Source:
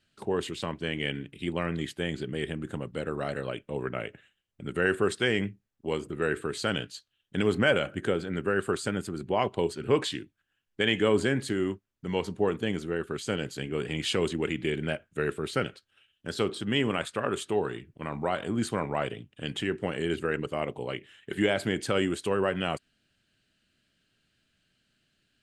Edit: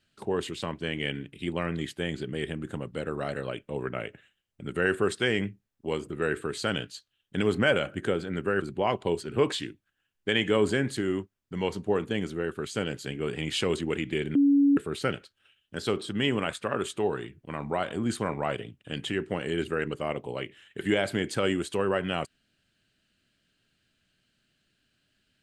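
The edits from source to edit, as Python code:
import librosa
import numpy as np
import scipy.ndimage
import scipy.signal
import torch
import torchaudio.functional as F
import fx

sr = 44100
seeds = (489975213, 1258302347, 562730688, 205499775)

y = fx.edit(x, sr, fx.cut(start_s=8.62, length_s=0.52),
    fx.bleep(start_s=14.87, length_s=0.42, hz=282.0, db=-17.0), tone=tone)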